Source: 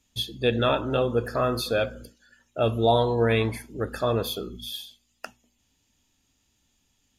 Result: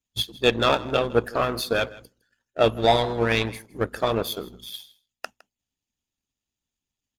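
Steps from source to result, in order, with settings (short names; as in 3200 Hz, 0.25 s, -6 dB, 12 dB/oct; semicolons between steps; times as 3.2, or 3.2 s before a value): power-law curve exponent 1.4; harmonic-percussive split percussive +9 dB; echo 0.16 s -21 dB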